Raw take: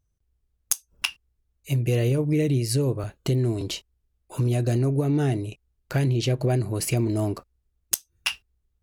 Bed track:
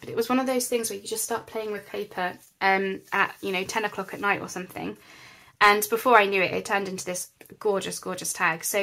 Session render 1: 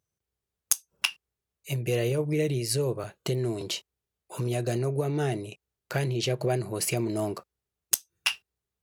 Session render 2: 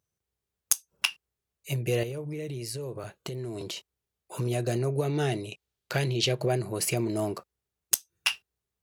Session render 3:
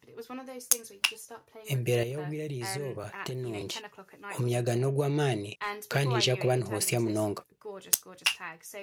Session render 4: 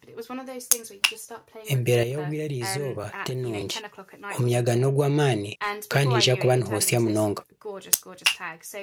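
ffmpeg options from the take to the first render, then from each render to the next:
-af "highpass=180,equalizer=f=270:t=o:w=0.29:g=-14"
-filter_complex "[0:a]asettb=1/sr,asplit=3[a][b][c];[a]atrim=end=2.034[d];[b]atrim=start=2.03:end=3.77,asetpts=PTS-STARTPTS,afade=t=in:d=0.004:c=qsin,afade=t=out:st=1.736:d=0.004:c=qsin,acompressor=threshold=-32dB:ratio=6:attack=3.2:release=140:knee=1:detection=peak[e];[c]atrim=start=3.766[f];[d][e]acrossfade=d=0.004:c1=hsin:c2=qsin[g];[g][f]acrossfade=d=0.004:c1=qsin:c2=hsin,asettb=1/sr,asplit=3[h][i][j];[h]atrim=end=4.964[k];[i]atrim=start=4.96:end=6.4,asetpts=PTS-STARTPTS,afade=t=in:d=0.004:c=qsin,afade=t=out:st=1.436:d=0.004:c=qsin,equalizer=f=3.7k:w=0.98:g=6[l];[j]atrim=start=6.396[m];[k][l]acrossfade=d=0.004:c1=hsin:c2=qsin[n];[n][m]acrossfade=d=0.004:c1=qsin:c2=hsin"
-filter_complex "[1:a]volume=-17.5dB[a];[0:a][a]amix=inputs=2:normalize=0"
-af "volume=6dB,alimiter=limit=-2dB:level=0:latency=1"

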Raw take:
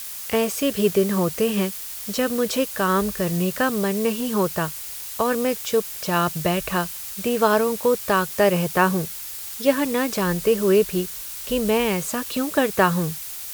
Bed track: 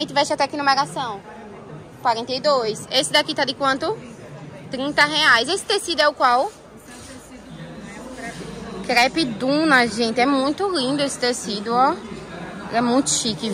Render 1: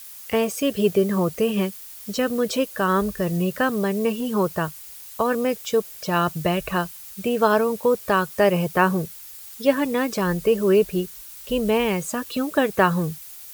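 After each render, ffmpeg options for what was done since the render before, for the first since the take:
-af "afftdn=nr=9:nf=-34"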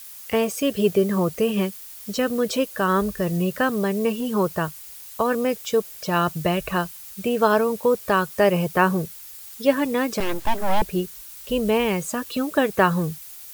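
-filter_complex "[0:a]asettb=1/sr,asplit=3[a][b][c];[a]atrim=end=10.204[d];[b]atrim=start=10.2:end=10.82,asetpts=PTS-STARTPTS,afade=t=in:d=0.004:c=qsin,afade=t=out:st=0.616:d=0.004:c=qsin,aeval=exprs='abs(val(0))':c=same[e];[c]atrim=start=10.816[f];[d][e]acrossfade=d=0.004:c1=hsin:c2=qsin[g];[g][f]acrossfade=d=0.004:c1=qsin:c2=hsin"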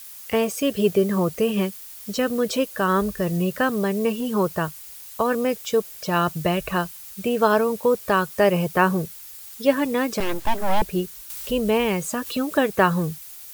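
-filter_complex "[0:a]asettb=1/sr,asplit=3[a][b][c];[a]atrim=end=11.304[d];[b]atrim=start=11.3:end=12.71,asetpts=PTS-STARTPTS,afade=t=in:d=0.004:c=qsin,afade=t=out:st=1.406:d=0.004:c=qsin,acompressor=mode=upward:threshold=-25dB:ratio=2.5:attack=3.2:release=140:knee=2.83:detection=peak[e];[c]atrim=start=12.706[f];[d][e]acrossfade=d=0.004:c1=hsin:c2=qsin[g];[g][f]acrossfade=d=0.004:c1=qsin:c2=hsin"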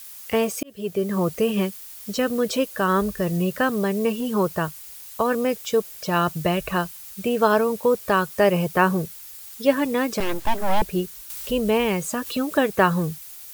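-filter_complex "[0:a]asplit=2[a][b];[a]atrim=end=0.63,asetpts=PTS-STARTPTS,afade=t=out:st=0.626:d=0.004:c=hsin[c];[b]atrim=start=0.63,asetpts=PTS-STARTPTS,afade=t=in:d=0.64[d];[c][d]concat=n=2:v=0:a=1"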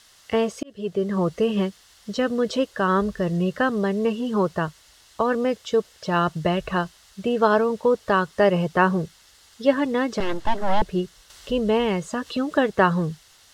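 -af "lowpass=4.8k,bandreject=f=2.4k:w=6.2"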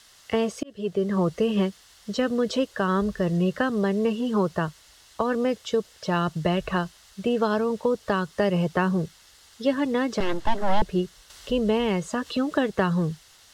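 -filter_complex "[0:a]acrossover=split=290|3000[a][b][c];[b]acompressor=threshold=-22dB:ratio=6[d];[a][d][c]amix=inputs=3:normalize=0"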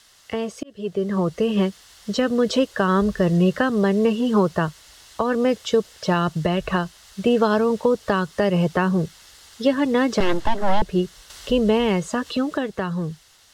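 -af "alimiter=limit=-14dB:level=0:latency=1:release=415,dynaudnorm=f=150:g=21:m=6dB"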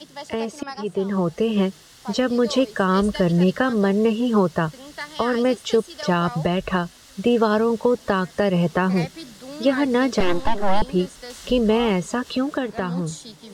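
-filter_complex "[1:a]volume=-17.5dB[a];[0:a][a]amix=inputs=2:normalize=0"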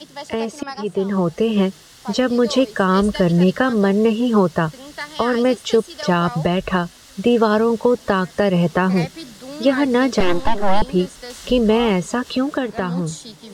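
-af "volume=3dB"

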